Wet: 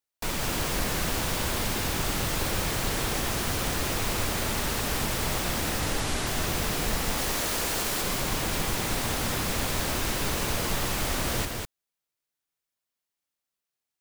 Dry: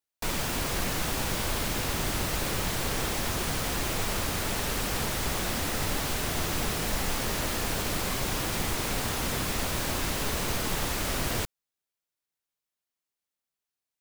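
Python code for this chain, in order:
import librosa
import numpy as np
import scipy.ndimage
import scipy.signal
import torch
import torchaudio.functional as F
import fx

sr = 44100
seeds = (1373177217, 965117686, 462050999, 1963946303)

p1 = fx.lowpass(x, sr, hz=11000.0, slope=24, at=(5.8, 6.27))
p2 = fx.bass_treble(p1, sr, bass_db=-6, treble_db=3, at=(7.17, 8.02))
y = p2 + fx.echo_single(p2, sr, ms=200, db=-4.0, dry=0)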